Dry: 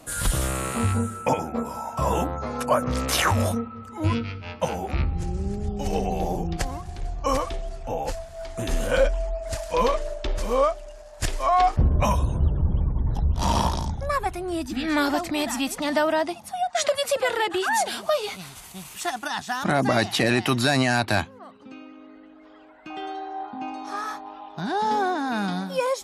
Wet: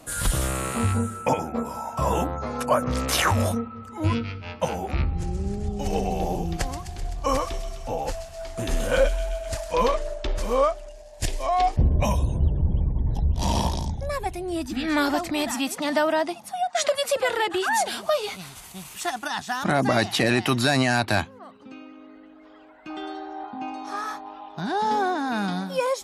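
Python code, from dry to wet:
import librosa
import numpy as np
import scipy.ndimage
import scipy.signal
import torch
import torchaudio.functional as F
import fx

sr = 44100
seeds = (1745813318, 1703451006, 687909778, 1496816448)

y = fx.echo_wet_highpass(x, sr, ms=128, feedback_pct=72, hz=2600.0, wet_db=-8.0, at=(5.15, 9.51))
y = fx.peak_eq(y, sr, hz=1300.0, db=-13.0, octaves=0.6, at=(10.89, 14.56))
y = fx.highpass(y, sr, hz=140.0, slope=12, at=(15.51, 17.16))
y = fx.comb(y, sr, ms=3.4, depth=0.65, at=(22.88, 23.44))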